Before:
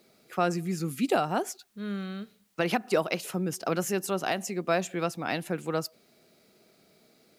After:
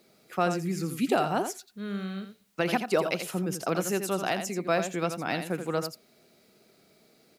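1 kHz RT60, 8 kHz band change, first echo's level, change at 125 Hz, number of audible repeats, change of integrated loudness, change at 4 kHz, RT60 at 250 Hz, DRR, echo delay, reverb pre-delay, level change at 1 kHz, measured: no reverb, +0.5 dB, -8.5 dB, +0.5 dB, 1, +0.5 dB, +0.5 dB, no reverb, no reverb, 84 ms, no reverb, +0.5 dB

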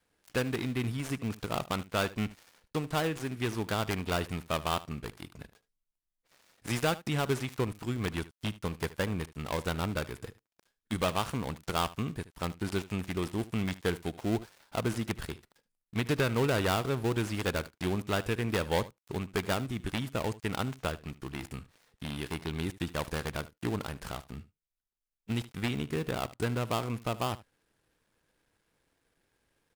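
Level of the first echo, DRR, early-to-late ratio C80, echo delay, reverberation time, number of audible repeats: -18.5 dB, no reverb, no reverb, 75 ms, no reverb, 1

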